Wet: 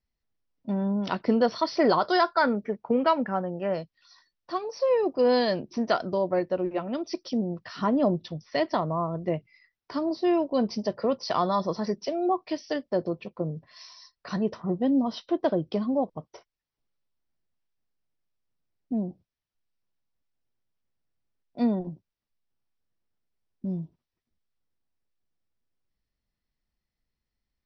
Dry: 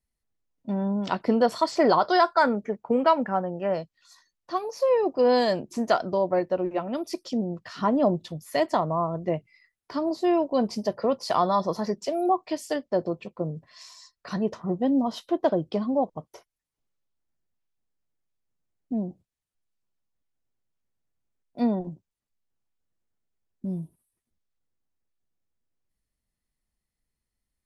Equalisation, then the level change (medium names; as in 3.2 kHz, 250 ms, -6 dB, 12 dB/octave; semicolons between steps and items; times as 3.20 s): dynamic bell 800 Hz, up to -4 dB, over -35 dBFS, Q 1.4; brick-wall FIR low-pass 6 kHz; 0.0 dB